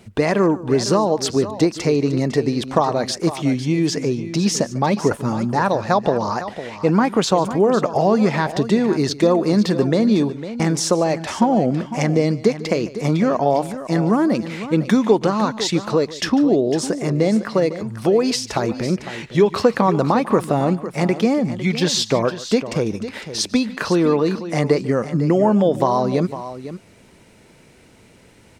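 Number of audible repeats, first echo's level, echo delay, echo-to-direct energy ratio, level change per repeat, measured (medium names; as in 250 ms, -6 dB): 2, -18.5 dB, 147 ms, -11.5 dB, no regular repeats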